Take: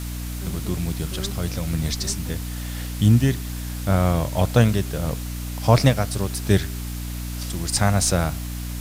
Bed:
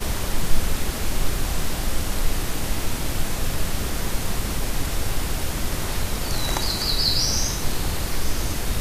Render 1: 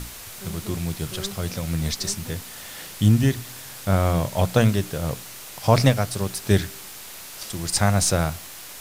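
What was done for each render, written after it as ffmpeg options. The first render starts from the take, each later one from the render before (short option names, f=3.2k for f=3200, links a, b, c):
-af "bandreject=f=60:t=h:w=6,bandreject=f=120:t=h:w=6,bandreject=f=180:t=h:w=6,bandreject=f=240:t=h:w=6,bandreject=f=300:t=h:w=6"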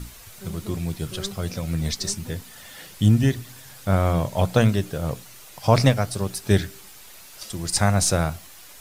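-af "afftdn=nr=8:nf=-40"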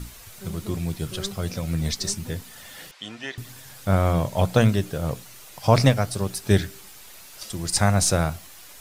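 -filter_complex "[0:a]asettb=1/sr,asplit=3[a][b][c];[a]atrim=end=2.914[d];[b]atrim=start=2.91:end=3.38,asetpts=PTS-STARTPTS,afade=t=in:d=0.004:c=qsin,afade=t=out:st=0.466:d=0.004:c=qsin,highpass=780,lowpass=4.2k[e];[c]atrim=start=3.376[f];[d][e]acrossfade=d=0.004:c1=hsin:c2=qsin[g];[g][f]acrossfade=d=0.004:c1=qsin:c2=hsin"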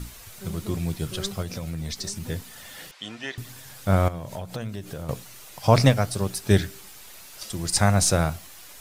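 -filter_complex "[0:a]asettb=1/sr,asplit=3[a][b][c];[a]atrim=end=1.424[d];[b]atrim=start=1.42:end=2.28,asetpts=PTS-STARTPTS,afade=t=in:d=0.004:c=qsin,afade=t=out:st=0.856:d=0.004:c=qsin,acompressor=threshold=-28dB:ratio=4:attack=3.2:release=140:knee=1:detection=peak[e];[c]atrim=start=2.276[f];[d][e]acrossfade=d=0.004:c1=hsin:c2=qsin[g];[g][f]acrossfade=d=0.004:c1=qsin:c2=hsin,asettb=1/sr,asplit=3[h][i][j];[h]atrim=end=4.084[k];[i]atrim=start=4.08:end=5.09,asetpts=PTS-STARTPTS,afade=t=in:d=0.004:c=qsin,afade=t=out:st=1.006:d=0.004:c=qsin,acompressor=threshold=-30dB:ratio=6:attack=3.2:release=140:knee=1:detection=peak[l];[j]atrim=start=5.086[m];[k][l]acrossfade=d=0.004:c1=hsin:c2=qsin[n];[n][m]acrossfade=d=0.004:c1=qsin:c2=hsin"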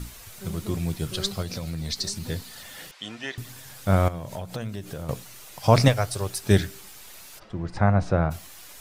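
-filter_complex "[0:a]asettb=1/sr,asplit=3[a][b][c];[a]atrim=end=1.144[d];[b]atrim=start=1.14:end=2.63,asetpts=PTS-STARTPTS,afade=t=in:d=0.004:c=qsin,afade=t=out:st=1.486:d=0.004:c=qsin,equalizer=f=4.3k:t=o:w=0.38:g=8[e];[c]atrim=start=2.626[f];[d][e]acrossfade=d=0.004:c1=hsin:c2=qsin[g];[g][f]acrossfade=d=0.004:c1=qsin:c2=hsin,asettb=1/sr,asplit=3[h][i][j];[h]atrim=end=5.884[k];[i]atrim=start=5.88:end=6.42,asetpts=PTS-STARTPTS,afade=t=in:d=0.004:c=qsin,afade=t=out:st=0.536:d=0.004:c=qsin,equalizer=f=210:t=o:w=0.77:g=-12[l];[j]atrim=start=6.416[m];[k][l]acrossfade=d=0.004:c1=hsin:c2=qsin[n];[n][m]acrossfade=d=0.004:c1=qsin:c2=hsin,asplit=3[o][p][q];[o]afade=t=out:st=7.38:d=0.02[r];[p]lowpass=1.5k,afade=t=in:st=7.38:d=0.02,afade=t=out:st=8.3:d=0.02[s];[q]afade=t=in:st=8.3:d=0.02[t];[r][s][t]amix=inputs=3:normalize=0"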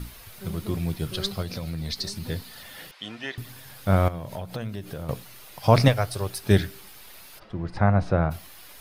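-af "equalizer=f=7.4k:w=2.4:g=-9.5,bandreject=f=5.8k:w=19"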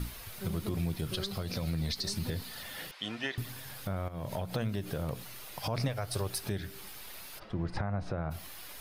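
-af "acompressor=threshold=-26dB:ratio=3,alimiter=limit=-23dB:level=0:latency=1:release=106"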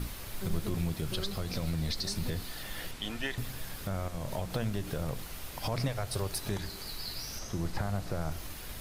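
-filter_complex "[1:a]volume=-19.5dB[a];[0:a][a]amix=inputs=2:normalize=0"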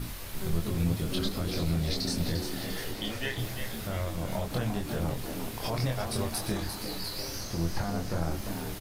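-filter_complex "[0:a]asplit=2[a][b];[b]adelay=24,volume=-3dB[c];[a][c]amix=inputs=2:normalize=0,asplit=8[d][e][f][g][h][i][j][k];[e]adelay=348,afreqshift=100,volume=-8dB[l];[f]adelay=696,afreqshift=200,volume=-12.7dB[m];[g]adelay=1044,afreqshift=300,volume=-17.5dB[n];[h]adelay=1392,afreqshift=400,volume=-22.2dB[o];[i]adelay=1740,afreqshift=500,volume=-26.9dB[p];[j]adelay=2088,afreqshift=600,volume=-31.7dB[q];[k]adelay=2436,afreqshift=700,volume=-36.4dB[r];[d][l][m][n][o][p][q][r]amix=inputs=8:normalize=0"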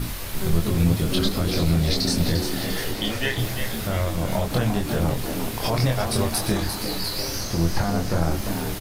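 -af "volume=8.5dB"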